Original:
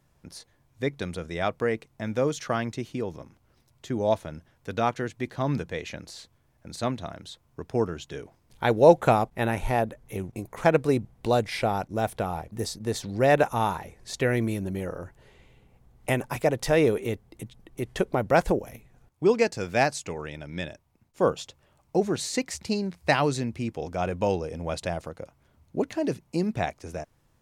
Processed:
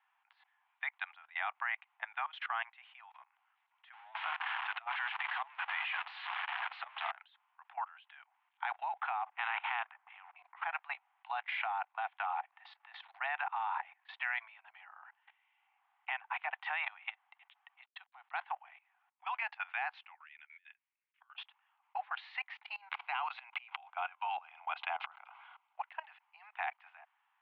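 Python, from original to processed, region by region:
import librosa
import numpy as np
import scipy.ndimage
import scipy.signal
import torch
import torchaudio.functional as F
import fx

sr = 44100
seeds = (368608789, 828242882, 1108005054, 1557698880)

y = fx.chain(x, sr, fx.zero_step(step_db=-28.0),
    fx.over_compress(threshold_db=-27.0, ratio=-0.5), at=(3.93, 7.11))
y = fx.chain(y, sr, fx.highpass(hz=44.0, slope=24),
    fx.air_absorb(metres=390.0),
    fx.spectral_comp(ratio=2.0), at=(9.26, 10.36))
y = fx.chain(y, sr, fx.ladder_lowpass(hz=4200.0, resonance_pct=85),
    fx.sample_gate(floor_db=-57.0), at=(17.81, 18.41))
y = fx.chain(y, sr, fx.ladder_bandpass(hz=2700.0, resonance_pct=30),
    fx.over_compress(threshold_db=-58.0, ratio=-1.0), at=(20.14, 21.35))
y = fx.chain(y, sr, fx.notch(hz=1800.0, q=5.2),
    fx.sustainer(db_per_s=37.0), at=(22.76, 25.76))
y = scipy.signal.sosfilt(scipy.signal.butter(16, 760.0, 'highpass', fs=sr, output='sos'), y)
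y = fx.level_steps(y, sr, step_db=20)
y = scipy.signal.sosfilt(scipy.signal.butter(8, 3100.0, 'lowpass', fs=sr, output='sos'), y)
y = F.gain(torch.from_numpy(y), 4.5).numpy()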